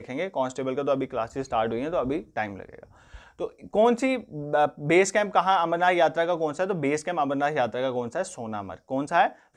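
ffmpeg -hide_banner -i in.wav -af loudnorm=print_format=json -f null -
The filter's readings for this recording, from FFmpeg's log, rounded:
"input_i" : "-26.0",
"input_tp" : "-7.5",
"input_lra" : "4.6",
"input_thresh" : "-36.3",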